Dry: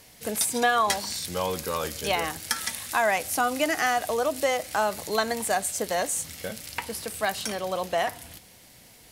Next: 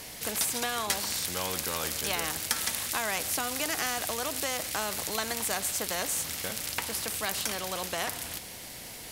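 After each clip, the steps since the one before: spectral compressor 2:1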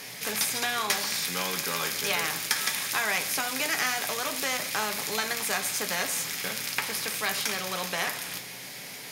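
reverb RT60 0.35 s, pre-delay 3 ms, DRR 5 dB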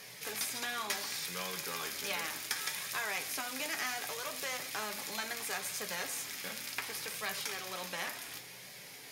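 flange 0.69 Hz, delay 1.6 ms, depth 2.1 ms, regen -51%; gain -5 dB

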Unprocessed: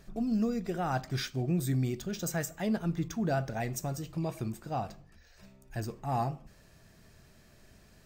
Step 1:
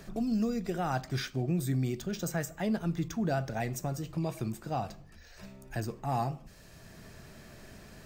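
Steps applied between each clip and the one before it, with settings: three-band squash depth 40%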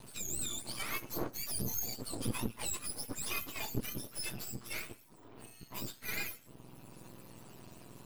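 spectrum mirrored in octaves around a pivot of 1300 Hz; half-wave rectifier; gain +2 dB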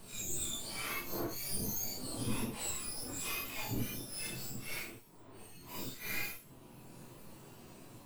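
phase scrambler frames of 0.2 s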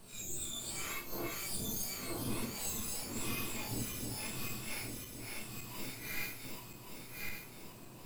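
regenerating reverse delay 0.561 s, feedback 67%, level -3 dB; gain -3 dB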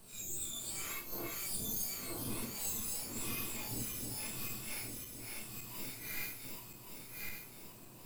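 high shelf 7800 Hz +7.5 dB; gain -3.5 dB

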